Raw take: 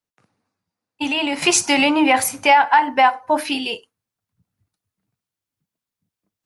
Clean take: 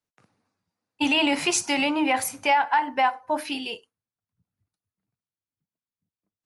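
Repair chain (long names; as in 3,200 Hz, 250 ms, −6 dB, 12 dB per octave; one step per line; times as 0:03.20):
level 0 dB, from 0:01.42 −7.5 dB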